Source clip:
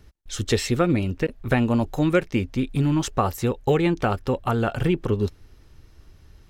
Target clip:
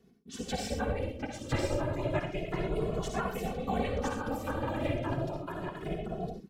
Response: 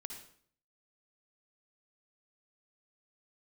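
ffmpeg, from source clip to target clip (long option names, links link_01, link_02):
-filter_complex "[0:a]asettb=1/sr,asplit=3[link_01][link_02][link_03];[link_01]atrim=end=1.174[link_04];[link_02]atrim=start=1.17:end=2.33,asetpts=PTS-STARTPTS,afade=type=in:duration=0.004:curve=qsin,afade=type=out:start_time=1.156:duration=0.004:curve=qsin,highshelf=frequency=11000:gain=-10.5[link_05];[link_03]atrim=start=2.326[link_06];[link_04][link_05]acrossfade=duration=0.004:curve1=hsin:curve2=qsin[link_07];[link_07][link_06]acrossfade=duration=0.004:curve1=qsin:curve2=hsin[link_08];[1:a]atrim=start_sample=2205,atrim=end_sample=6174[link_09];[link_08][link_09]afir=irnorm=-1:irlink=0,asubboost=boost=2:cutoff=60,aeval=exprs='val(0)*sin(2*PI*260*n/s)':channel_layout=same,aecho=1:1:1007:0.708,afftfilt=real='hypot(re,im)*cos(2*PI*random(0))':imag='hypot(re,im)*sin(2*PI*random(1))':win_size=512:overlap=0.75,asplit=2[link_10][link_11];[link_11]adelay=2.3,afreqshift=0.31[link_12];[link_10][link_12]amix=inputs=2:normalize=1,volume=4dB"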